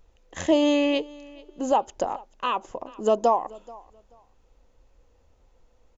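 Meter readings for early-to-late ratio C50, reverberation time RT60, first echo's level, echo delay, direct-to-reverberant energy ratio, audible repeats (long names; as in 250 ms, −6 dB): no reverb audible, no reverb audible, −22.5 dB, 432 ms, no reverb audible, 1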